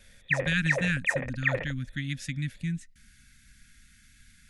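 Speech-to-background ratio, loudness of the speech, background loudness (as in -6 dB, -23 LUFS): -2.5 dB, -32.0 LUFS, -29.5 LUFS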